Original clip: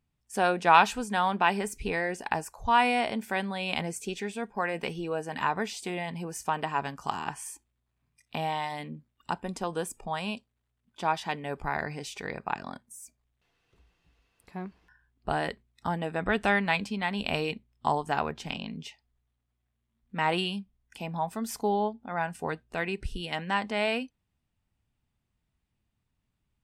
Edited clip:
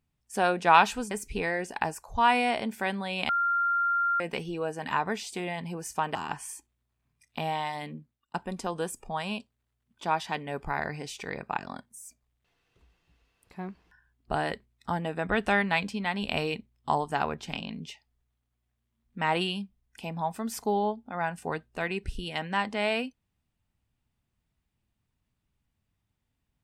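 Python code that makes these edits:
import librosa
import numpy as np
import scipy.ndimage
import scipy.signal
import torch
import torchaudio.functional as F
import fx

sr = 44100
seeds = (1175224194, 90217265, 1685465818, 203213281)

y = fx.edit(x, sr, fx.cut(start_s=1.11, length_s=0.5),
    fx.bleep(start_s=3.79, length_s=0.91, hz=1390.0, db=-23.0),
    fx.cut(start_s=6.65, length_s=0.47),
    fx.fade_out_span(start_s=8.88, length_s=0.43), tone=tone)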